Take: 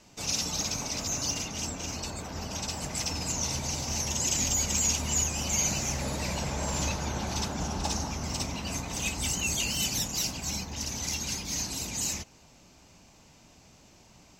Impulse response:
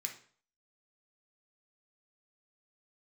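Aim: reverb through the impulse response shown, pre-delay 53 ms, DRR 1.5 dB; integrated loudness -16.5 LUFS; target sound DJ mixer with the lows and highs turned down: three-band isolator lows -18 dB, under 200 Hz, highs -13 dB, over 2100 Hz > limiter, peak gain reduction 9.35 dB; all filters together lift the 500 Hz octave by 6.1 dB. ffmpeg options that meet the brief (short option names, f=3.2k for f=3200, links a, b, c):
-filter_complex "[0:a]equalizer=f=500:t=o:g=8,asplit=2[a][b];[1:a]atrim=start_sample=2205,adelay=53[c];[b][c]afir=irnorm=-1:irlink=0,volume=-0.5dB[d];[a][d]amix=inputs=2:normalize=0,acrossover=split=200 2100:gain=0.126 1 0.224[e][f][g];[e][f][g]amix=inputs=3:normalize=0,volume=19.5dB,alimiter=limit=-7dB:level=0:latency=1"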